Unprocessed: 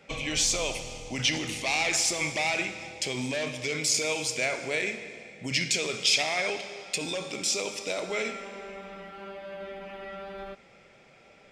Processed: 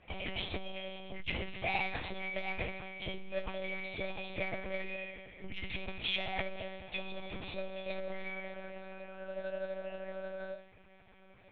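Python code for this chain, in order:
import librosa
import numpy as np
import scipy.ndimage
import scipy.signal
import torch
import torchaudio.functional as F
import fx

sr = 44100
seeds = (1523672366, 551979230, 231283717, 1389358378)

y = fx.dynamic_eq(x, sr, hz=650.0, q=2.6, threshold_db=-48.0, ratio=4.0, max_db=6)
y = fx.comb_fb(y, sr, f0_hz=120.0, decay_s=0.42, harmonics='odd', damping=0.0, mix_pct=90)
y = fx.lpc_monotone(y, sr, seeds[0], pitch_hz=190.0, order=8)
y = fx.air_absorb(y, sr, metres=95.0)
y = fx.transformer_sat(y, sr, knee_hz=180.0)
y = F.gain(torch.from_numpy(y), 9.5).numpy()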